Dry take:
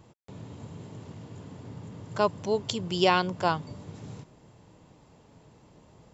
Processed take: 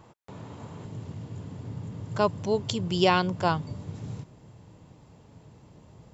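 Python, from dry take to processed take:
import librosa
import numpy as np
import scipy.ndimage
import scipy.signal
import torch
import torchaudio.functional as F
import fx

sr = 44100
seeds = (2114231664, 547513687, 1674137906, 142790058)

y = fx.peak_eq(x, sr, hz=fx.steps((0.0, 1100.0), (0.85, 99.0)), db=7.0, octaves=1.9)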